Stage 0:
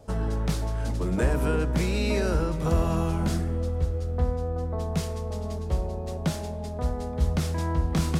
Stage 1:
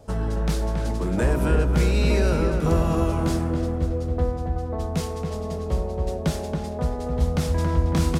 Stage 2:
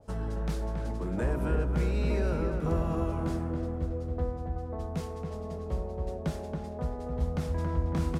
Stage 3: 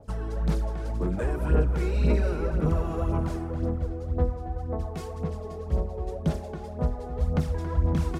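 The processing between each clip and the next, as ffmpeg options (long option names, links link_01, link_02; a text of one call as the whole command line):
ffmpeg -i in.wav -filter_complex "[0:a]asplit=2[link_01][link_02];[link_02]adelay=276,lowpass=frequency=1900:poles=1,volume=-4dB,asplit=2[link_03][link_04];[link_04]adelay=276,lowpass=frequency=1900:poles=1,volume=0.52,asplit=2[link_05][link_06];[link_06]adelay=276,lowpass=frequency=1900:poles=1,volume=0.52,asplit=2[link_07][link_08];[link_08]adelay=276,lowpass=frequency=1900:poles=1,volume=0.52,asplit=2[link_09][link_10];[link_10]adelay=276,lowpass=frequency=1900:poles=1,volume=0.52,asplit=2[link_11][link_12];[link_12]adelay=276,lowpass=frequency=1900:poles=1,volume=0.52,asplit=2[link_13][link_14];[link_14]adelay=276,lowpass=frequency=1900:poles=1,volume=0.52[link_15];[link_01][link_03][link_05][link_07][link_09][link_11][link_13][link_15]amix=inputs=8:normalize=0,volume=2dB" out.wav
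ffmpeg -i in.wav -af "adynamicequalizer=threshold=0.00447:dfrequency=2500:dqfactor=0.7:tfrequency=2500:tqfactor=0.7:attack=5:release=100:ratio=0.375:range=4:mode=cutabove:tftype=highshelf,volume=-8dB" out.wav
ffmpeg -i in.wav -af "aphaser=in_gain=1:out_gain=1:delay=2.8:decay=0.55:speed=1.9:type=sinusoidal" out.wav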